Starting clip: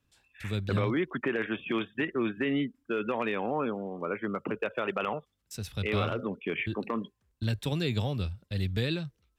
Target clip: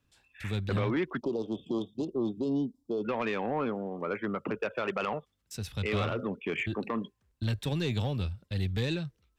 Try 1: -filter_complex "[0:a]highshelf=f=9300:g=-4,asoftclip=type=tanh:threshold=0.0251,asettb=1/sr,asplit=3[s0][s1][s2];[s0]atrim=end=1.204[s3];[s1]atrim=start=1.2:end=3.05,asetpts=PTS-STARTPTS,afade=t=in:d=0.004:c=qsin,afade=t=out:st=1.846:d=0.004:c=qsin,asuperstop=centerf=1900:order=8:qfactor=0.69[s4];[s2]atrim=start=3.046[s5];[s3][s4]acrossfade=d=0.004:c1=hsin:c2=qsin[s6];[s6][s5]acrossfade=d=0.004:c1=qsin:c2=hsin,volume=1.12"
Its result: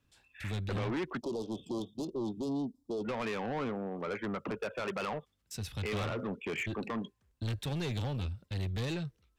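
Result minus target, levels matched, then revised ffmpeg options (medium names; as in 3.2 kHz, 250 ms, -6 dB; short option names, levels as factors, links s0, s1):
saturation: distortion +9 dB
-filter_complex "[0:a]highshelf=f=9300:g=-4,asoftclip=type=tanh:threshold=0.0708,asettb=1/sr,asplit=3[s0][s1][s2];[s0]atrim=end=1.204[s3];[s1]atrim=start=1.2:end=3.05,asetpts=PTS-STARTPTS,afade=t=in:d=0.004:c=qsin,afade=t=out:st=1.846:d=0.004:c=qsin,asuperstop=centerf=1900:order=8:qfactor=0.69[s4];[s2]atrim=start=3.046[s5];[s3][s4]acrossfade=d=0.004:c1=hsin:c2=qsin[s6];[s6][s5]acrossfade=d=0.004:c1=qsin:c2=hsin,volume=1.12"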